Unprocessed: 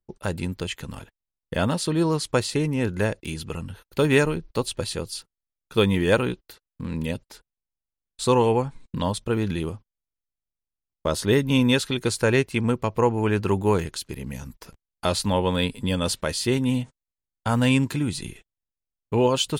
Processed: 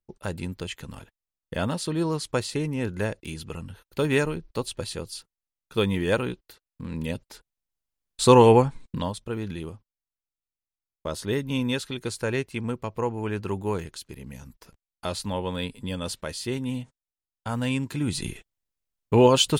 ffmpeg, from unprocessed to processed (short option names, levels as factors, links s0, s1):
-af "volume=6.31,afade=t=in:st=6.89:d=1.66:silence=0.334965,afade=t=out:st=8.55:d=0.58:silence=0.237137,afade=t=in:st=17.89:d=0.4:silence=0.298538"